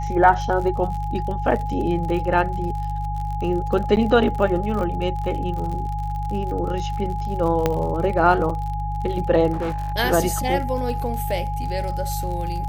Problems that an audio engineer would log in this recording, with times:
crackle 52 per s -29 dBFS
hum 50 Hz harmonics 3 -27 dBFS
whine 830 Hz -28 dBFS
3.96–3.97 s: dropout 9.5 ms
7.66 s: pop -6 dBFS
9.52–9.94 s: clipped -21 dBFS

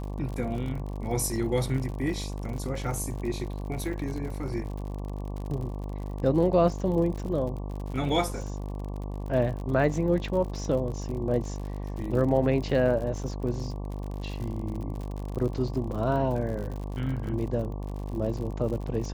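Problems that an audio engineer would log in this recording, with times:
buzz 50 Hz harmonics 23 -34 dBFS
crackle 64 per s -35 dBFS
3.93 s: dropout 3.2 ms

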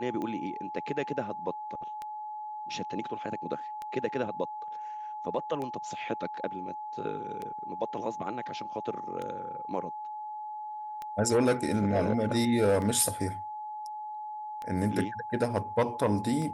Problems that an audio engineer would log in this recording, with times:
tick 33 1/3 rpm -24 dBFS
whine 850 Hz -36 dBFS

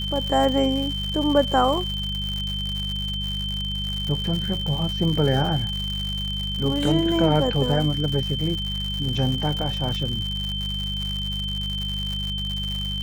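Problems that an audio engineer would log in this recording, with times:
crackle 150 per s -27 dBFS
hum 50 Hz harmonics 4 -30 dBFS
whine 3.1 kHz -28 dBFS

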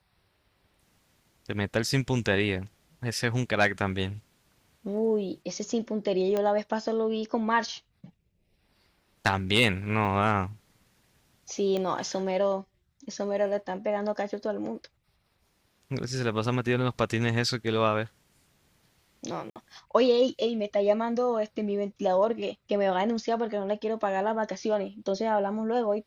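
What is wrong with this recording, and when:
6.37 s: pop -16 dBFS
10.05 s: dropout 2.2 ms
11.77 s: pop -19 dBFS
19.50–19.56 s: dropout 58 ms

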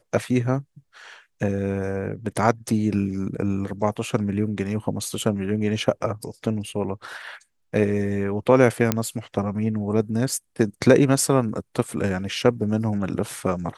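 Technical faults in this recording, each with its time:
8.92 s: pop -4 dBFS

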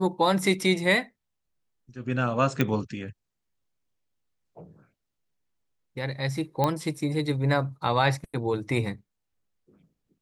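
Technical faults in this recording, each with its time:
2.61 s: pop -11 dBFS
6.64 s: pop -11 dBFS

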